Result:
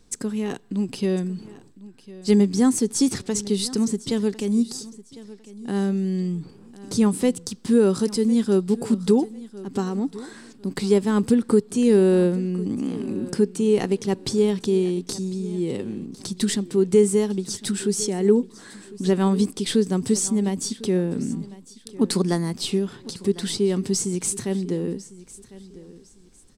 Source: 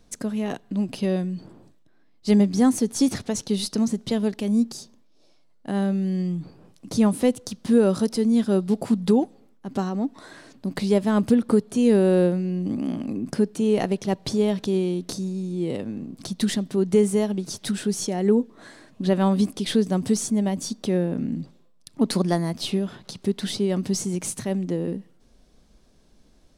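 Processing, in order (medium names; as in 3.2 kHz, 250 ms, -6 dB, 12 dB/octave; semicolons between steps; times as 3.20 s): graphic EQ with 31 bands 400 Hz +5 dB, 630 Hz -11 dB, 5 kHz +3 dB, 8 kHz +9 dB; feedback delay 1052 ms, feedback 29%, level -18.5 dB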